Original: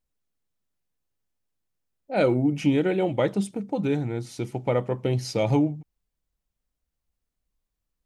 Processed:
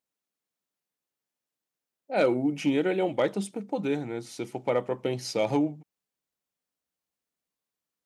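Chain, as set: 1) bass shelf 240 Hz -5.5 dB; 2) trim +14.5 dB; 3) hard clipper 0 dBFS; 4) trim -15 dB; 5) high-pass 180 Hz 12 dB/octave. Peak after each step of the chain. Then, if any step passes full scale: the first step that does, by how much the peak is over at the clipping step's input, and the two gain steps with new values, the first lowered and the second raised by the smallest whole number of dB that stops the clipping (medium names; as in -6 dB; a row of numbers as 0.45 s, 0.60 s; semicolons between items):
-11.0 dBFS, +3.5 dBFS, 0.0 dBFS, -15.0 dBFS, -12.5 dBFS; step 2, 3.5 dB; step 2 +10.5 dB, step 4 -11 dB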